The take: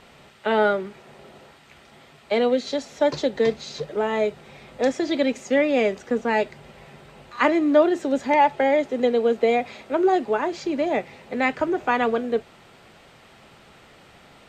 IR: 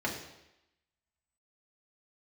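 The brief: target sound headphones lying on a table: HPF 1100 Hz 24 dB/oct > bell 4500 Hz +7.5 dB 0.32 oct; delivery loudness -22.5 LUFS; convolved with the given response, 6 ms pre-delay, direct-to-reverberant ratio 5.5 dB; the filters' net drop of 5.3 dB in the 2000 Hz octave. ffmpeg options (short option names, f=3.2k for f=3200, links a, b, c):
-filter_complex "[0:a]equalizer=f=2k:t=o:g=-6.5,asplit=2[a][b];[1:a]atrim=start_sample=2205,adelay=6[c];[b][c]afir=irnorm=-1:irlink=0,volume=-12.5dB[d];[a][d]amix=inputs=2:normalize=0,highpass=f=1.1k:w=0.5412,highpass=f=1.1k:w=1.3066,equalizer=f=4.5k:t=o:w=0.32:g=7.5,volume=10.5dB"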